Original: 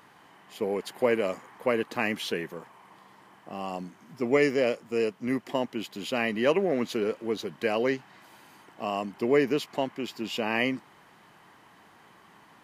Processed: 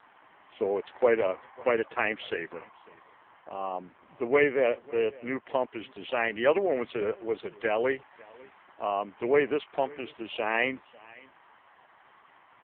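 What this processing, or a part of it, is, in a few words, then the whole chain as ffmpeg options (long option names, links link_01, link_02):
satellite phone: -af "asubboost=boost=11:cutoff=67,highpass=320,lowpass=3200,aecho=1:1:547:0.0708,volume=3.5dB" -ar 8000 -c:a libopencore_amrnb -b:a 5150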